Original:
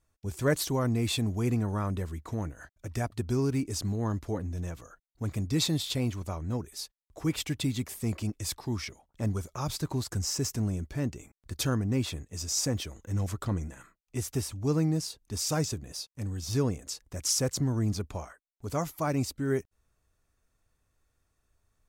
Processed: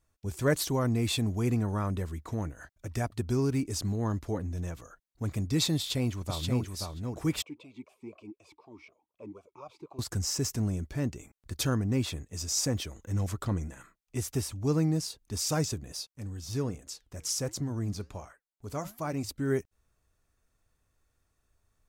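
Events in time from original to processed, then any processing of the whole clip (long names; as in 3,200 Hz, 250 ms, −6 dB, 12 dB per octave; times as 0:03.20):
0:05.76–0:06.73: delay throw 530 ms, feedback 10%, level −4 dB
0:07.42–0:09.99: formant filter swept between two vowels a-u 4 Hz
0:16.08–0:19.29: flanger 1.3 Hz, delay 2.7 ms, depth 7 ms, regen −84%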